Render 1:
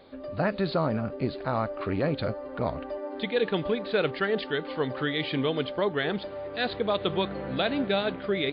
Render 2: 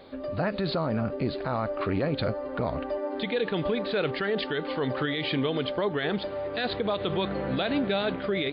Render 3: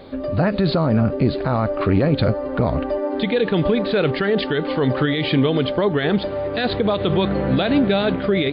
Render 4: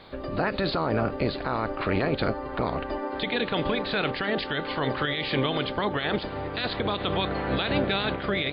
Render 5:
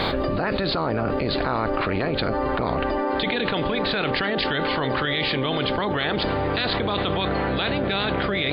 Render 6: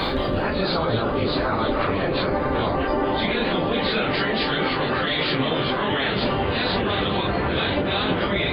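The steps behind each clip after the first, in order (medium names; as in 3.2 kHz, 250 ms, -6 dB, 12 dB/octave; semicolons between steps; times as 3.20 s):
peak limiter -22.5 dBFS, peak gain reduction 8.5 dB; trim +4 dB
bass shelf 330 Hz +7.5 dB; trim +6 dB
spectral peaks clipped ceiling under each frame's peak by 16 dB; trim -8 dB
level flattener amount 100%; trim -1.5 dB
phase randomisation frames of 100 ms; ever faster or slower copies 166 ms, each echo -2 st, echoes 2, each echo -6 dB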